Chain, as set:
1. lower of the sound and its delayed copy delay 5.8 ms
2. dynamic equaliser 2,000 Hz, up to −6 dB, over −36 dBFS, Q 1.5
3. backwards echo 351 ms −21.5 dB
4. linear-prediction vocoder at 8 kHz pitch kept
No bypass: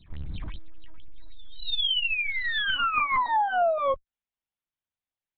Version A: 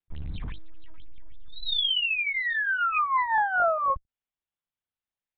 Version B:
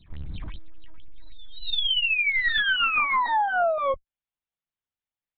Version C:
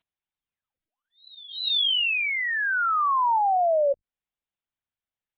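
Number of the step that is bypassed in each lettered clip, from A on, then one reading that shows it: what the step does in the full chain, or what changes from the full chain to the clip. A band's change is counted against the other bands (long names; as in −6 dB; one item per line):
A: 3, 500 Hz band −4.0 dB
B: 2, change in momentary loudness spread +2 LU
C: 1, change in crest factor −4.5 dB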